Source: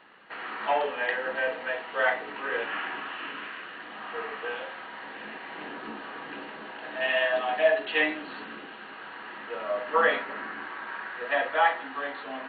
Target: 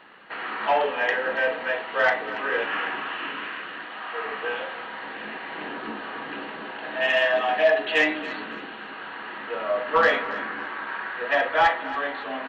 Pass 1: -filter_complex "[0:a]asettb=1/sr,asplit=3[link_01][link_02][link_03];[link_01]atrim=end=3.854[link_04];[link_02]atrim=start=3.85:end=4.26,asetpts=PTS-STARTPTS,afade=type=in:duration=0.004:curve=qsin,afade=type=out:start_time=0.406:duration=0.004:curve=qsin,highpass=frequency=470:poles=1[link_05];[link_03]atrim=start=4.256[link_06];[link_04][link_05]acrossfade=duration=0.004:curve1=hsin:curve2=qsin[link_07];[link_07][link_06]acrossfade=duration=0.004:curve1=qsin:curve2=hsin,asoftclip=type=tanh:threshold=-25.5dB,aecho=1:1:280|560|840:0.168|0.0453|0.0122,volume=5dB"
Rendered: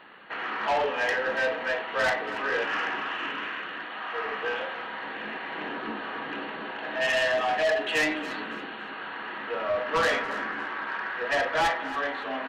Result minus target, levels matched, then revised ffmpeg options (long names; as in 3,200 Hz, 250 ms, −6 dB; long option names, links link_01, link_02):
soft clipping: distortion +11 dB
-filter_complex "[0:a]asettb=1/sr,asplit=3[link_01][link_02][link_03];[link_01]atrim=end=3.854[link_04];[link_02]atrim=start=3.85:end=4.26,asetpts=PTS-STARTPTS,afade=type=in:duration=0.004:curve=qsin,afade=type=out:start_time=0.406:duration=0.004:curve=qsin,highpass=frequency=470:poles=1[link_05];[link_03]atrim=start=4.256[link_06];[link_04][link_05]acrossfade=duration=0.004:curve1=hsin:curve2=qsin[link_07];[link_07][link_06]acrossfade=duration=0.004:curve1=qsin:curve2=hsin,asoftclip=type=tanh:threshold=-15dB,aecho=1:1:280|560|840:0.168|0.0453|0.0122,volume=5dB"